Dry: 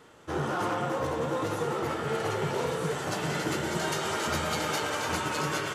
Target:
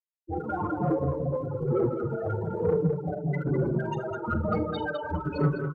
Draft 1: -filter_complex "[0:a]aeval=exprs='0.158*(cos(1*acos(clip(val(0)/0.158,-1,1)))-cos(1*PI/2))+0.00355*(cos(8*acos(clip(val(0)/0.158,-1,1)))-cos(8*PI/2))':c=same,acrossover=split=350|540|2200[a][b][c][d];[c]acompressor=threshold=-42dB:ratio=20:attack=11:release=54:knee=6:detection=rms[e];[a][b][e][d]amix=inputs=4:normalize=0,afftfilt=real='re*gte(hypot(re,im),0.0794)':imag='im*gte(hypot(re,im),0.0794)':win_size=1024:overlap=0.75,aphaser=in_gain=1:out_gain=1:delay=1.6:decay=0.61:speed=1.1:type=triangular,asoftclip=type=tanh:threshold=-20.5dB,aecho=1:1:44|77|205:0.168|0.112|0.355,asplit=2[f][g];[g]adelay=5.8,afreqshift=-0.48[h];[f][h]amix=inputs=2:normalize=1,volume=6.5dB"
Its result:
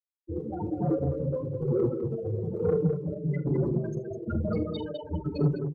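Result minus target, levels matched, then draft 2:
compressor: peak gain reduction +6 dB
-filter_complex "[0:a]aeval=exprs='0.158*(cos(1*acos(clip(val(0)/0.158,-1,1)))-cos(1*PI/2))+0.00355*(cos(8*acos(clip(val(0)/0.158,-1,1)))-cos(8*PI/2))':c=same,acrossover=split=350|540|2200[a][b][c][d];[c]acompressor=threshold=-35.5dB:ratio=20:attack=11:release=54:knee=6:detection=rms[e];[a][b][e][d]amix=inputs=4:normalize=0,afftfilt=real='re*gte(hypot(re,im),0.0794)':imag='im*gte(hypot(re,im),0.0794)':win_size=1024:overlap=0.75,aphaser=in_gain=1:out_gain=1:delay=1.6:decay=0.61:speed=1.1:type=triangular,asoftclip=type=tanh:threshold=-20.5dB,aecho=1:1:44|77|205:0.168|0.112|0.355,asplit=2[f][g];[g]adelay=5.8,afreqshift=-0.48[h];[f][h]amix=inputs=2:normalize=1,volume=6.5dB"

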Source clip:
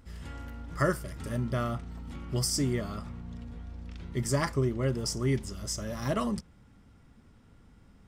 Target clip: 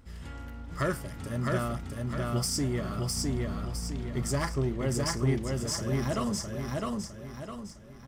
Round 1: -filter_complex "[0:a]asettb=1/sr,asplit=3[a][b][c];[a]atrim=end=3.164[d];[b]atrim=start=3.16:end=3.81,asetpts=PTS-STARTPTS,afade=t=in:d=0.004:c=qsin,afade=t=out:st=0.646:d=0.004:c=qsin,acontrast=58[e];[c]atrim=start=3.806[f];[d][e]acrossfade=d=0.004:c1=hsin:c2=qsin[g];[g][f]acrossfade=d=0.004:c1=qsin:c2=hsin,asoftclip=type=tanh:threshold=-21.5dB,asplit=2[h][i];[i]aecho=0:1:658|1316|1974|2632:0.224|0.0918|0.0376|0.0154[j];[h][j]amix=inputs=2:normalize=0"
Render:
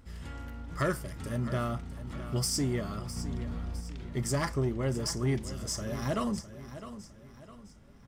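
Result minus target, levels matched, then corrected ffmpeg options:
echo-to-direct -11 dB
-filter_complex "[0:a]asettb=1/sr,asplit=3[a][b][c];[a]atrim=end=3.164[d];[b]atrim=start=3.16:end=3.81,asetpts=PTS-STARTPTS,afade=t=in:d=0.004:c=qsin,afade=t=out:st=0.646:d=0.004:c=qsin,acontrast=58[e];[c]atrim=start=3.806[f];[d][e]acrossfade=d=0.004:c1=hsin:c2=qsin[g];[g][f]acrossfade=d=0.004:c1=qsin:c2=hsin,asoftclip=type=tanh:threshold=-21.5dB,asplit=2[h][i];[i]aecho=0:1:658|1316|1974|2632|3290:0.794|0.326|0.134|0.0547|0.0224[j];[h][j]amix=inputs=2:normalize=0"

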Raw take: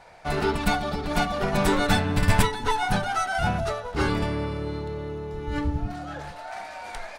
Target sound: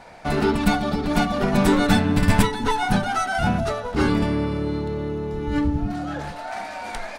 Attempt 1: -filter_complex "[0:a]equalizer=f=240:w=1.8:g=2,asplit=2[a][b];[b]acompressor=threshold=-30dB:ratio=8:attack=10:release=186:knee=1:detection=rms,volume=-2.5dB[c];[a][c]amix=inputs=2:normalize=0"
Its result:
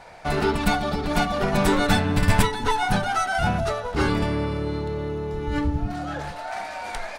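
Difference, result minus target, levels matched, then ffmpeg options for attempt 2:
250 Hz band -3.0 dB
-filter_complex "[0:a]equalizer=f=240:w=1.8:g=9.5,asplit=2[a][b];[b]acompressor=threshold=-30dB:ratio=8:attack=10:release=186:knee=1:detection=rms,volume=-2.5dB[c];[a][c]amix=inputs=2:normalize=0"

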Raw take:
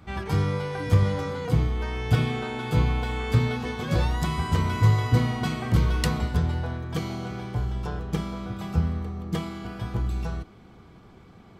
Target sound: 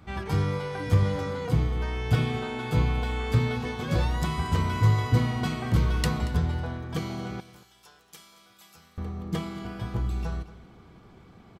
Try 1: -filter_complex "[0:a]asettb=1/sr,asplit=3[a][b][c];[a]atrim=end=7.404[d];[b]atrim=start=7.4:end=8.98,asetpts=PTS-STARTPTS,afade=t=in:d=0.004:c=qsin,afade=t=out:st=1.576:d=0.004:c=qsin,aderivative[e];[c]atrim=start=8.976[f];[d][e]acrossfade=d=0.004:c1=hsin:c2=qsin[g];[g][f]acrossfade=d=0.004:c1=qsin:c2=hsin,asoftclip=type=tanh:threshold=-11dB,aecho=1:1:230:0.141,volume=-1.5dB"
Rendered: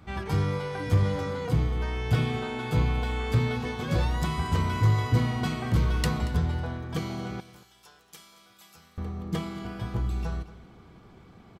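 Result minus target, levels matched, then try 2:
soft clip: distortion +12 dB
-filter_complex "[0:a]asettb=1/sr,asplit=3[a][b][c];[a]atrim=end=7.404[d];[b]atrim=start=7.4:end=8.98,asetpts=PTS-STARTPTS,afade=t=in:d=0.004:c=qsin,afade=t=out:st=1.576:d=0.004:c=qsin,aderivative[e];[c]atrim=start=8.976[f];[d][e]acrossfade=d=0.004:c1=hsin:c2=qsin[g];[g][f]acrossfade=d=0.004:c1=qsin:c2=hsin,asoftclip=type=tanh:threshold=-4dB,aecho=1:1:230:0.141,volume=-1.5dB"

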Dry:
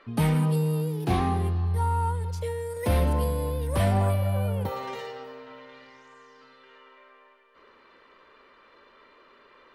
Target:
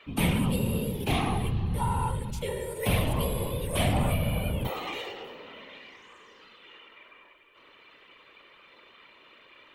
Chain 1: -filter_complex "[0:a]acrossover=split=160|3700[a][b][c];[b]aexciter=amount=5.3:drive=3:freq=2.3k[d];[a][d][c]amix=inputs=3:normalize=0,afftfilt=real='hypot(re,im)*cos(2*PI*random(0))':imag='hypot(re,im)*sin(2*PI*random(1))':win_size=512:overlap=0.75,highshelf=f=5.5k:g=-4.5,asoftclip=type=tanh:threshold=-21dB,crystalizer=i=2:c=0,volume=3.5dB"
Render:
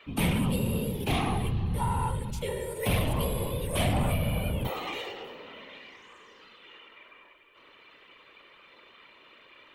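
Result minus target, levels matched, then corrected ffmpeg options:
soft clip: distortion +10 dB
-filter_complex "[0:a]acrossover=split=160|3700[a][b][c];[b]aexciter=amount=5.3:drive=3:freq=2.3k[d];[a][d][c]amix=inputs=3:normalize=0,afftfilt=real='hypot(re,im)*cos(2*PI*random(0))':imag='hypot(re,im)*sin(2*PI*random(1))':win_size=512:overlap=0.75,highshelf=f=5.5k:g=-4.5,asoftclip=type=tanh:threshold=-15dB,crystalizer=i=2:c=0,volume=3.5dB"

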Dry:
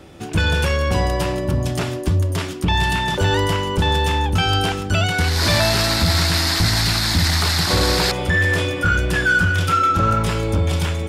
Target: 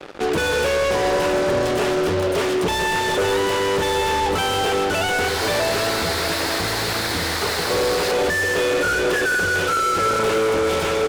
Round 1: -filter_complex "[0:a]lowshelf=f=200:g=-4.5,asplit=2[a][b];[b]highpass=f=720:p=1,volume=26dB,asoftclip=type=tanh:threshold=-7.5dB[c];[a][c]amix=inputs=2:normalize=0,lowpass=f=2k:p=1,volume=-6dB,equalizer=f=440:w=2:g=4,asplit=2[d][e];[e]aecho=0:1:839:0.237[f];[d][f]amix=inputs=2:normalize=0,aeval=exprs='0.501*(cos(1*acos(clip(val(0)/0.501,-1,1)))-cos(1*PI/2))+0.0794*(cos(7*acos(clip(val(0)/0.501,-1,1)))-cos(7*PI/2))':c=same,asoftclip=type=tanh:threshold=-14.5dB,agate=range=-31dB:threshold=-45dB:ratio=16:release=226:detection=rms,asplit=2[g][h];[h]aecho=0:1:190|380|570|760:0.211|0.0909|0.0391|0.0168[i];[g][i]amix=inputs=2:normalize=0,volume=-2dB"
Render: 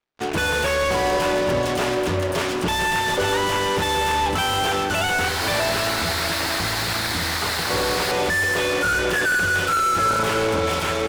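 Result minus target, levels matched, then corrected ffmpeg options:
500 Hz band -3.0 dB
-filter_complex "[0:a]lowshelf=f=200:g=-4.5,asplit=2[a][b];[b]highpass=f=720:p=1,volume=26dB,asoftclip=type=tanh:threshold=-7.5dB[c];[a][c]amix=inputs=2:normalize=0,lowpass=f=2k:p=1,volume=-6dB,equalizer=f=440:w=2:g=13.5,asplit=2[d][e];[e]aecho=0:1:839:0.237[f];[d][f]amix=inputs=2:normalize=0,aeval=exprs='0.501*(cos(1*acos(clip(val(0)/0.501,-1,1)))-cos(1*PI/2))+0.0794*(cos(7*acos(clip(val(0)/0.501,-1,1)))-cos(7*PI/2))':c=same,asoftclip=type=tanh:threshold=-14.5dB,agate=range=-31dB:threshold=-45dB:ratio=16:release=226:detection=rms,asplit=2[g][h];[h]aecho=0:1:190|380|570|760:0.211|0.0909|0.0391|0.0168[i];[g][i]amix=inputs=2:normalize=0,volume=-2dB"

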